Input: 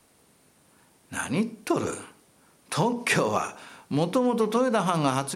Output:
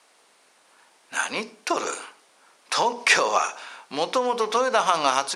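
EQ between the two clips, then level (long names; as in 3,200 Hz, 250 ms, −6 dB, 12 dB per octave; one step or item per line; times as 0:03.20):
dynamic equaliser 5,500 Hz, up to +5 dB, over −51 dBFS, Q 1.5
band-pass filter 650–7,000 Hz
+6.5 dB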